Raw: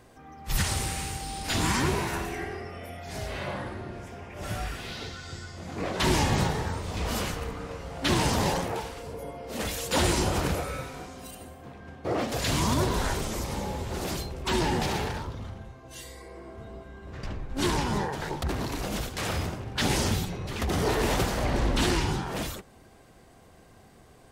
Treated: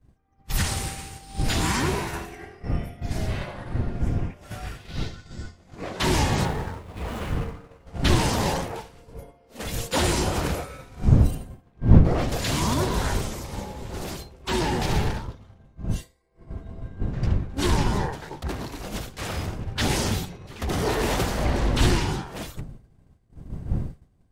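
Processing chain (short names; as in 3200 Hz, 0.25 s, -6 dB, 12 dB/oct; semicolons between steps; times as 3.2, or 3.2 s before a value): 6.45–7.87 median filter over 9 samples; wind noise 120 Hz -29 dBFS; expander -26 dBFS; gain +1.5 dB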